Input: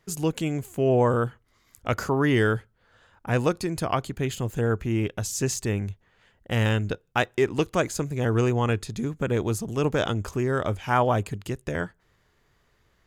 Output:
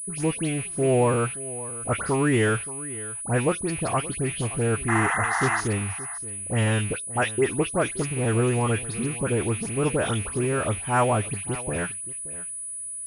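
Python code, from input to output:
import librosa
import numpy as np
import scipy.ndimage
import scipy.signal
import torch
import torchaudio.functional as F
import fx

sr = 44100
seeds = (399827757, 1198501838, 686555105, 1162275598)

p1 = fx.rattle_buzz(x, sr, strikes_db=-35.0, level_db=-27.0)
p2 = fx.dispersion(p1, sr, late='highs', ms=96.0, hz=2400.0)
p3 = fx.spec_paint(p2, sr, seeds[0], shape='noise', start_s=4.88, length_s=0.73, low_hz=660.0, high_hz=2100.0, level_db=-25.0)
p4 = p3 + fx.echo_single(p3, sr, ms=574, db=-17.0, dry=0)
y = fx.pwm(p4, sr, carrier_hz=9900.0)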